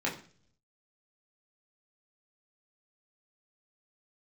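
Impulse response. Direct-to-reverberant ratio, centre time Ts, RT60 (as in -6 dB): -5.0 dB, 24 ms, 0.45 s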